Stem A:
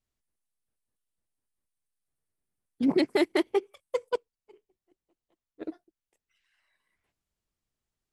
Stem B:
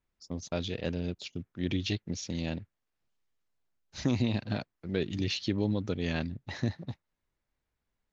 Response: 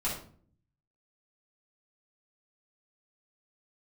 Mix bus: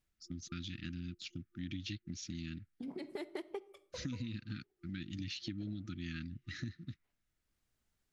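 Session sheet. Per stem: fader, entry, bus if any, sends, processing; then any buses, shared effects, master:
+2.0 dB, 0.00 s, send −22.5 dB, downward compressor 4 to 1, threshold −35 dBFS, peak gain reduction 13.5 dB; automatic ducking −15 dB, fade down 0.25 s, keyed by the second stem
−2.5 dB, 0.00 s, no send, brick-wall band-stop 350–1,200 Hz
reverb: on, RT60 0.50 s, pre-delay 4 ms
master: downward compressor 3 to 1, threshold −41 dBFS, peak gain reduction 11 dB

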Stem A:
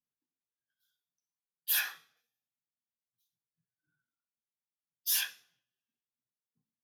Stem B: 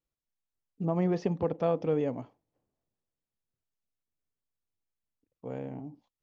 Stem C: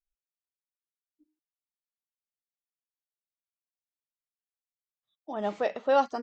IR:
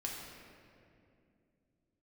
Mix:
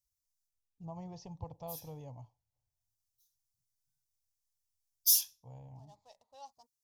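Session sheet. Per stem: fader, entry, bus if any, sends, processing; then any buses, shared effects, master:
+2.5 dB, 0.00 s, no send, automatic ducking −24 dB, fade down 0.35 s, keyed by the second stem
+0.5 dB, 0.00 s, no send, high-shelf EQ 2,200 Hz −11.5 dB
−16.0 dB, 0.45 s, no send, adaptive Wiener filter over 15 samples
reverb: not used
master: drawn EQ curve 110 Hz 0 dB, 210 Hz −23 dB, 400 Hz −27 dB, 940 Hz −6 dB, 1,400 Hz −29 dB, 5,700 Hz +8 dB, 8,500 Hz +5 dB

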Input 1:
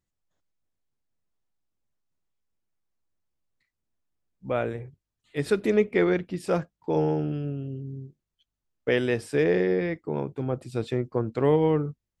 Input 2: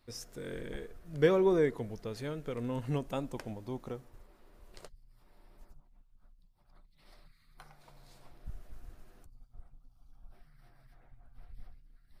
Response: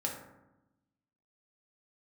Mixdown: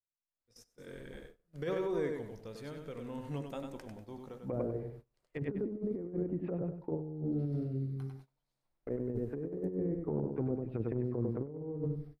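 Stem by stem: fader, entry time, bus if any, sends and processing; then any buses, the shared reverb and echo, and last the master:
−5.5 dB, 0.00 s, send −21 dB, echo send −4.5 dB, treble cut that deepens with the level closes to 330 Hz, closed at −24 dBFS; low-pass filter 2,500 Hz 24 dB per octave
−11.5 dB, 0.40 s, send −11 dB, echo send −3.5 dB, no processing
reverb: on, RT60 0.95 s, pre-delay 3 ms
echo: repeating echo 97 ms, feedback 30%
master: noise gate −51 dBFS, range −22 dB; low-shelf EQ 110 Hz −2.5 dB; compressor whose output falls as the input rises −34 dBFS, ratio −0.5

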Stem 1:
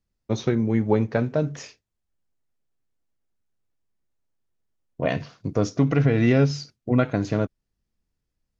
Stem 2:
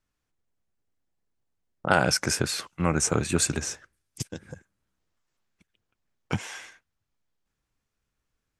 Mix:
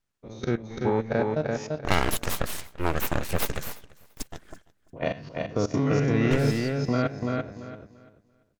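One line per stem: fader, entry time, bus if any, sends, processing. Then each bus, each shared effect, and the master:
−5.5 dB, 0.00 s, no send, echo send −3.5 dB, every bin's largest magnitude spread in time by 120 ms; output level in coarse steps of 18 dB
−0.5 dB, 0.00 s, no send, echo send −22.5 dB, full-wave rectification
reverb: not used
echo: repeating echo 340 ms, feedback 23%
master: no processing

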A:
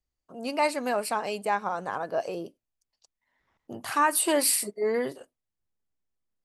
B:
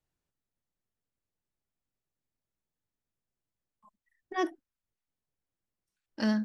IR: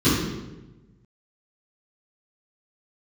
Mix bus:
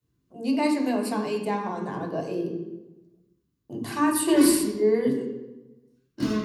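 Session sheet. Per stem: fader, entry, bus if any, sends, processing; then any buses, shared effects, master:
−4.0 dB, 0.00 s, send −17.5 dB, downward expander −44 dBFS; parametric band 1,300 Hz −14 dB 0.25 octaves
−6.0 dB, 0.00 s, send −6 dB, soft clipping −20 dBFS, distortion −21 dB; high-shelf EQ 9,200 Hz +8.5 dB; wave folding −33.5 dBFS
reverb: on, RT60 1.1 s, pre-delay 3 ms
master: no processing

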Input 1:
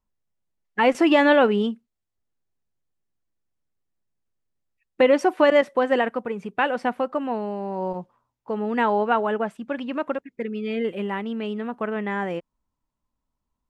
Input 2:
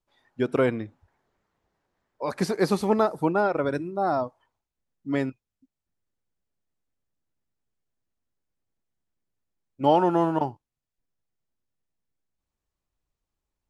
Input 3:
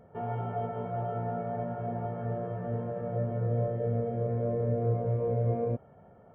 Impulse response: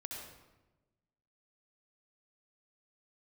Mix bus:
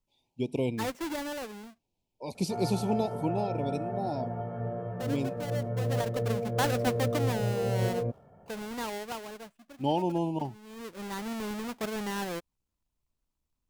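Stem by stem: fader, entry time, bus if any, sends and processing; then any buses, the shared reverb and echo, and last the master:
−10.5 dB, 0.00 s, no send, each half-wave held at its own peak; automatic ducking −17 dB, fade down 1.65 s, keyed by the second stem
−1.0 dB, 0.00 s, no send, elliptic band-stop filter 930–2,400 Hz, stop band 40 dB; parametric band 680 Hz −8.5 dB 2.4 octaves
−1.0 dB, 2.35 s, no send, no processing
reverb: not used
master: no processing

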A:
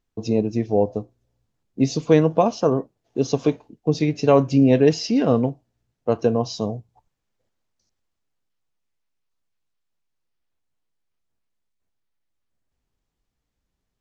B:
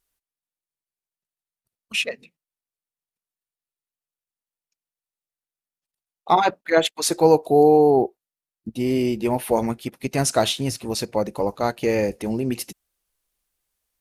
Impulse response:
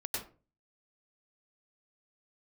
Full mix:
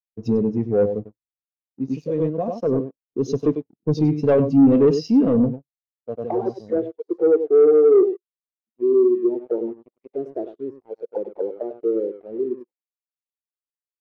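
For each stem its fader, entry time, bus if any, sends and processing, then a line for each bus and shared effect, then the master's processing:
−2.0 dB, 0.00 s, no send, echo send −10 dB, rotating-speaker cabinet horn 6 Hz; automatic ducking −12 dB, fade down 0.70 s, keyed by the second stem
−0.5 dB, 0.00 s, no send, echo send −8.5 dB, envelope filter 380–1,900 Hz, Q 4.6, down, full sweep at −20 dBFS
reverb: not used
echo: single-tap delay 98 ms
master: leveller curve on the samples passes 3; every bin expanded away from the loudest bin 1.5 to 1

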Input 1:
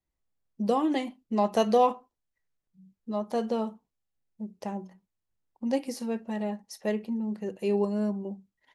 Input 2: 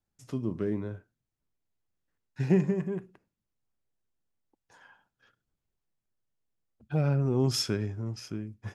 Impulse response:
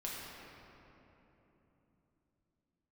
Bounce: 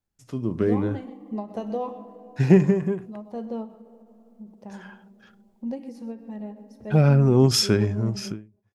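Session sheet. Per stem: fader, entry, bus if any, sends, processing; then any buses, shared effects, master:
−15.5 dB, 0.00 s, send −16.5 dB, echo send −18.5 dB, spectral tilt −3 dB per octave; automatic ducking −7 dB, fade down 1.05 s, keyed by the second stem
−0.5 dB, 0.00 s, no send, no echo send, no processing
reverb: on, RT60 3.5 s, pre-delay 6 ms
echo: single-tap delay 128 ms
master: automatic gain control gain up to 10 dB; every ending faded ahead of time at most 160 dB per second

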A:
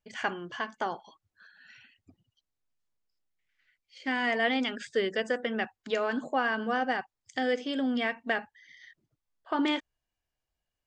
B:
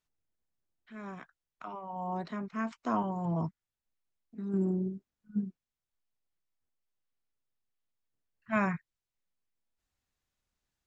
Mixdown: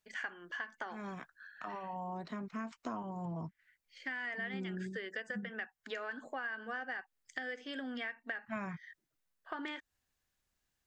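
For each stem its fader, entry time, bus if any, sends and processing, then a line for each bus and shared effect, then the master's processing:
−8.5 dB, 0.00 s, no send, high-pass filter 220 Hz; parametric band 1,700 Hz +12 dB 0.77 octaves
+0.5 dB, 0.00 s, no send, no processing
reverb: not used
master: high-shelf EQ 7,200 Hz +5 dB; downward compressor 6 to 1, threshold −38 dBFS, peak gain reduction 14.5 dB

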